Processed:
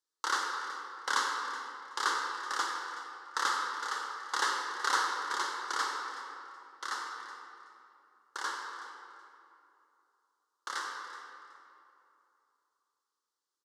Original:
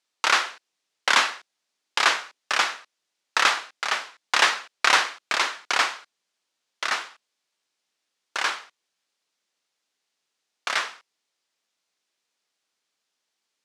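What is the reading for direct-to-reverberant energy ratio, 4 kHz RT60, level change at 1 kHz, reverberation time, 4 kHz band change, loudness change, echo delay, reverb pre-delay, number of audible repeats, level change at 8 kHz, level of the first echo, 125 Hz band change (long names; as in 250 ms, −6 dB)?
1.0 dB, 1.7 s, −6.5 dB, 2.8 s, −12.5 dB, −11.0 dB, 374 ms, 33 ms, 1, −8.5 dB, −15.5 dB, can't be measured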